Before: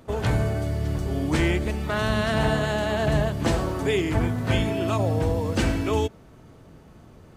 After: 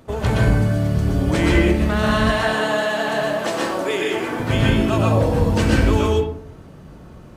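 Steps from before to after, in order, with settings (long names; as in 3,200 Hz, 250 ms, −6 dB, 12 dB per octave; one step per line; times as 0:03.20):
0:02.15–0:04.40: high-pass filter 410 Hz 12 dB per octave
convolution reverb RT60 0.60 s, pre-delay 115 ms, DRR −2.5 dB
level +2 dB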